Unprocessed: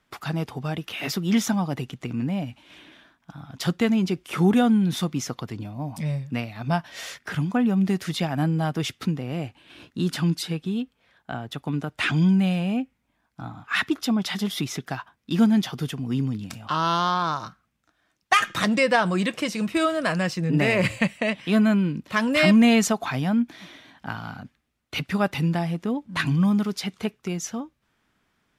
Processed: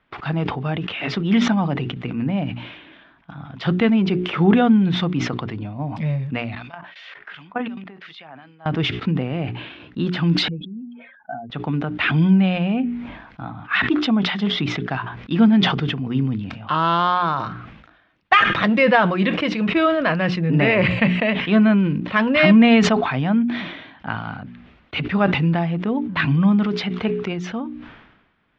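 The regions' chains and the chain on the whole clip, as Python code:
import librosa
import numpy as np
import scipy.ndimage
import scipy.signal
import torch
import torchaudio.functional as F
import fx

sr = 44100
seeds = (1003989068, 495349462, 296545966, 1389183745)

y = fx.chain(x, sr, fx.level_steps(step_db=20),
    fx.filter_lfo_bandpass(shape='sine', hz=2.7, low_hz=930.0, high_hz=4800.0, q=0.76), at=(6.55, 8.66))
y = fx.chain(y, sr, fx.spec_expand(power=2.8),
    fx.highpass(hz=380.0, slope=12), at=(10.48, 11.5))
y = scipy.signal.sosfilt(scipy.signal.butter(4, 3300.0, 'lowpass', fs=sr, output='sos'), y)
y = fx.hum_notches(y, sr, base_hz=60, count=7)
y = fx.sustainer(y, sr, db_per_s=55.0)
y = F.gain(torch.from_numpy(y), 4.5).numpy()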